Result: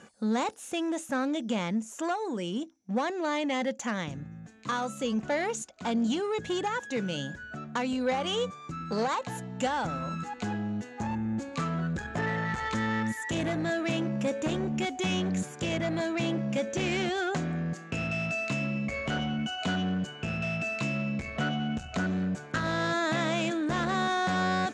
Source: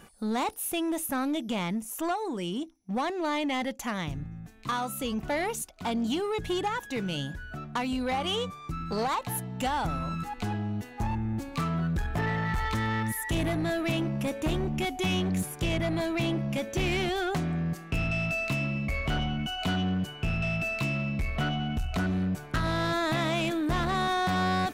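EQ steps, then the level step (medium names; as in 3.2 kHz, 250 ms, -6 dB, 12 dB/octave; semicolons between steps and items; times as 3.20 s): cabinet simulation 120–8000 Hz, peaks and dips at 220 Hz +5 dB, 520 Hz +7 dB, 1.6 kHz +5 dB, 6.9 kHz +8 dB; -2.0 dB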